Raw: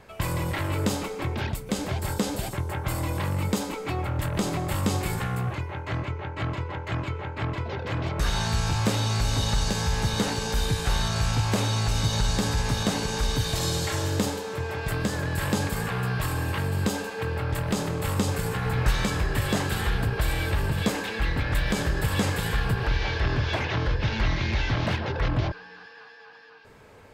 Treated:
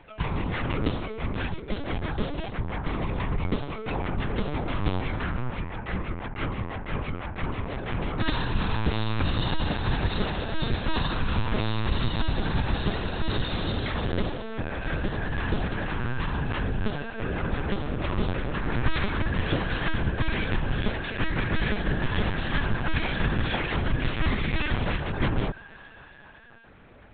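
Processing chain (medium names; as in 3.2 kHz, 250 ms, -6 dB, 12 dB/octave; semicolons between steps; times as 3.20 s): LPC vocoder at 8 kHz pitch kept; peaking EQ 690 Hz -2 dB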